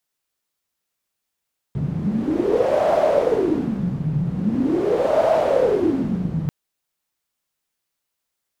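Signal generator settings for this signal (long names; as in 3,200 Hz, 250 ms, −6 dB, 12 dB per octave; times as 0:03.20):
wind from filtered noise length 4.74 s, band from 150 Hz, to 640 Hz, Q 8.4, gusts 2, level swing 5.5 dB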